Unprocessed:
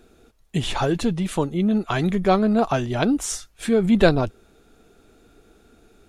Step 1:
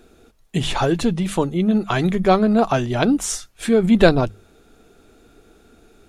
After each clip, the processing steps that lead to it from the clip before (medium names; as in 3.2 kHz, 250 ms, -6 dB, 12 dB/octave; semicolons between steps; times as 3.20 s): hum notches 50/100/150/200 Hz; trim +3 dB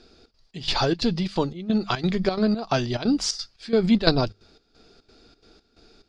resonant low-pass 4.8 kHz, resonance Q 11; trance gate "xxx.xx..xxx." 177 bpm -12 dB; trim -4 dB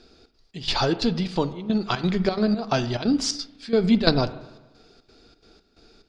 reverberation RT60 1.1 s, pre-delay 34 ms, DRR 13 dB